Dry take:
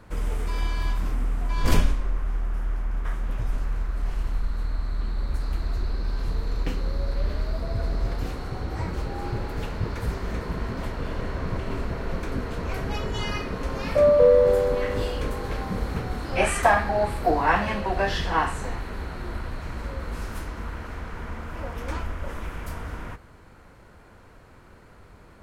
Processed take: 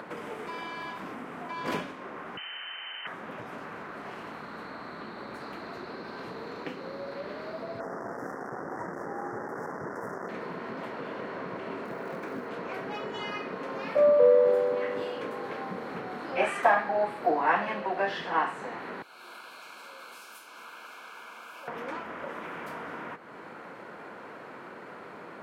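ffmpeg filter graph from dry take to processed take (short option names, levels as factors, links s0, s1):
-filter_complex "[0:a]asettb=1/sr,asplit=3[s0][s1][s2];[s0]atrim=end=2.374[s3];[s1]atrim=start=2.37:end=3.07,asetpts=PTS-STARTPTS,afade=t=in:d=0.004:c=qsin,afade=t=out:st=0.696:d=0.004:c=qsin,highpass=100,highshelf=f=2300:g=12,lowpass=f=2600:t=q:w=0.5098,lowpass=f=2600:t=q:w=0.6013,lowpass=f=2600:t=q:w=0.9,lowpass=f=2600:t=q:w=2.563,afreqshift=-3100[s4];[s2]atrim=start=3.066[s5];[s3][s4]acrossfade=d=0.004:c1=hsin:c2=qsin[s6];[s6][s5]acrossfade=d=0.004:c1=qsin:c2=hsin,asettb=1/sr,asplit=3[s7][s8][s9];[s7]atrim=end=7.804[s10];[s8]atrim=start=7.8:end=10.29,asetpts=PTS-STARTPTS,afade=t=in:d=0.004:c=qsin,afade=t=out:st=2.486:d=0.004:c=qsin,acrusher=bits=4:mix=0:aa=0.5,asuperstop=centerf=3200:order=12:qfactor=0.92[s11];[s9]atrim=start=10.286[s12];[s10][s11]acrossfade=d=0.004:c1=hsin:c2=qsin[s13];[s13][s12]acrossfade=d=0.004:c1=qsin:c2=hsin,asettb=1/sr,asplit=3[s14][s15][s16];[s14]atrim=end=11.854[s17];[s15]atrim=start=11.85:end=12.49,asetpts=PTS-STARTPTS,afade=t=in:d=0.004:c=qsin,afade=t=out:st=0.636:d=0.004:c=qsin,equalizer=f=3300:w=2.2:g=-4.5,acrusher=bits=6:mode=log:mix=0:aa=0.000001[s18];[s16]atrim=start=12.486[s19];[s17][s18]acrossfade=d=0.004:c1=hsin:c2=qsin[s20];[s20][s19]acrossfade=d=0.004:c1=qsin:c2=hsin,asettb=1/sr,asplit=3[s21][s22][s23];[s21]atrim=end=19.024[s24];[s22]atrim=start=19.02:end=21.68,asetpts=PTS-STARTPTS,afade=t=in:d=0.004:c=qsin,afade=t=out:st=2.656:d=0.004:c=qsin,asuperstop=centerf=1900:order=8:qfactor=4.4,aderivative[s25];[s23]atrim=start=21.676[s26];[s24][s25]acrossfade=d=0.004:c1=hsin:c2=qsin[s27];[s27][s26]acrossfade=d=0.004:c1=qsin:c2=hsin,highpass=f=160:w=0.5412,highpass=f=160:w=1.3066,acompressor=mode=upward:threshold=0.0447:ratio=2.5,bass=f=250:g=-8,treble=f=4000:g=-14,volume=0.708"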